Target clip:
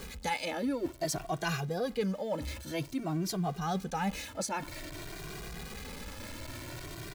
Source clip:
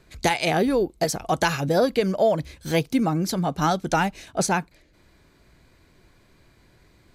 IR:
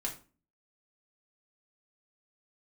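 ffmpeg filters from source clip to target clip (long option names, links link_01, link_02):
-filter_complex "[0:a]aeval=exprs='val(0)+0.5*0.0188*sgn(val(0))':channel_layout=same,areverse,acompressor=threshold=-28dB:ratio=6,areverse,asplit=2[link_01][link_02];[link_02]adelay=2,afreqshift=0.52[link_03];[link_01][link_03]amix=inputs=2:normalize=1"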